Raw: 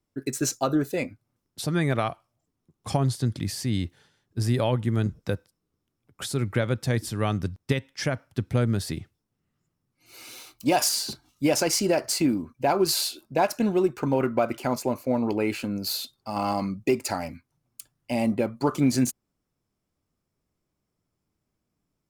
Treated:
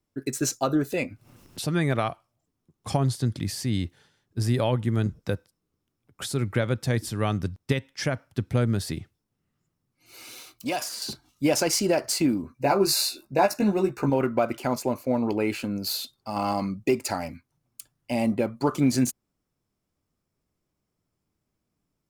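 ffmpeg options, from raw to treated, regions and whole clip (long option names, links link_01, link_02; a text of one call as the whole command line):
ffmpeg -i in.wav -filter_complex "[0:a]asettb=1/sr,asplit=3[link_01][link_02][link_03];[link_01]atrim=end=0.924[link_04];[link_02]atrim=start=0.92:end=1.78,asetpts=PTS-STARTPTS,afade=type=in:duration=0.004:curve=qsin,afade=type=out:start_time=0.856:duration=0.004:curve=qsin,equalizer=frequency=2700:width_type=o:width=0.21:gain=7,acompressor=mode=upward:threshold=-31dB:ratio=2.5:attack=3.2:release=140:knee=2.83:detection=peak[link_05];[link_03]atrim=start=1.776[link_06];[link_04][link_05]acrossfade=duration=0.004:curve1=hsin:curve2=qsin[link_07];[link_07][link_06]acrossfade=duration=0.004:curve1=qsin:curve2=hsin,asettb=1/sr,asplit=3[link_08][link_09][link_10];[link_08]atrim=end=10.354[link_11];[link_09]atrim=start=10.35:end=11.02,asetpts=PTS-STARTPTS,afade=type=in:duration=0.004:curve=qsin,afade=type=out:start_time=0.666:duration=0.004:curve=qsin,highpass=44,bandreject=frequency=860:width=9.5,acrossover=split=160|670|2300[link_12][link_13][link_14][link_15];[link_12]acompressor=threshold=-50dB:ratio=3[link_16];[link_13]acompressor=threshold=-32dB:ratio=3[link_17];[link_14]acompressor=threshold=-32dB:ratio=3[link_18];[link_15]acompressor=threshold=-36dB:ratio=3[link_19];[link_16][link_17][link_18][link_19]amix=inputs=4:normalize=0[link_20];[link_10]atrim=start=11.016[link_21];[link_11][link_20]acrossfade=duration=0.004:curve1=hsin:curve2=qsin[link_22];[link_22][link_21]acrossfade=duration=0.004:curve1=qsin:curve2=hsin,asettb=1/sr,asplit=3[link_23][link_24][link_25];[link_23]atrim=end=12.424[link_26];[link_24]atrim=start=12.42:end=14.1,asetpts=PTS-STARTPTS,afade=type=in:duration=0.004:curve=qsin,afade=type=out:start_time=1.676:duration=0.004:curve=qsin,asuperstop=centerf=3200:order=20:qfactor=5.4,asplit=2[link_27][link_28];[link_28]adelay=15,volume=-4dB[link_29];[link_27][link_29]amix=inputs=2:normalize=0,atrim=end_sample=74088[link_30];[link_25]atrim=start=14.096[link_31];[link_26][link_30]acrossfade=duration=0.004:curve1=hsin:curve2=qsin[link_32];[link_32][link_31]acrossfade=duration=0.004:curve1=qsin:curve2=hsin" out.wav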